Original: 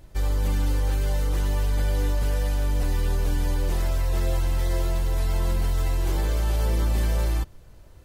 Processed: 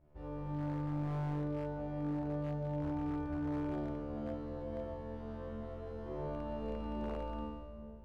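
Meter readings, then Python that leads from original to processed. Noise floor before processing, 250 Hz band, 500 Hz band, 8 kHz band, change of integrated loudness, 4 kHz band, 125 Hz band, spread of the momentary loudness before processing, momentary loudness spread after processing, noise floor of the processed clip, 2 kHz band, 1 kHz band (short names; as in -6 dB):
-48 dBFS, -2.5 dB, -7.0 dB, under -35 dB, -13.5 dB, under -20 dB, -14.5 dB, 2 LU, 8 LU, -49 dBFS, -17.0 dB, -8.0 dB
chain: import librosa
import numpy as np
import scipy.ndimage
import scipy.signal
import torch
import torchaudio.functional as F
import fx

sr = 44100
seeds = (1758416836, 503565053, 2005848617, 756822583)

y = fx.bit_reversed(x, sr, seeds[0], block=16)
y = scipy.signal.sosfilt(scipy.signal.butter(2, 1200.0, 'lowpass', fs=sr, output='sos'), y)
y = fx.low_shelf(y, sr, hz=73.0, db=-8.5)
y = fx.comb_fb(y, sr, f0_hz=74.0, decay_s=1.4, harmonics='all', damping=0.0, mix_pct=100)
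y = fx.echo_wet_lowpass(y, sr, ms=400, feedback_pct=63, hz=670.0, wet_db=-10.5)
y = 10.0 ** (-38.0 / 20.0) * (np.abs((y / 10.0 ** (-38.0 / 20.0) + 3.0) % 4.0 - 2.0) - 1.0)
y = y * 10.0 ** (7.0 / 20.0)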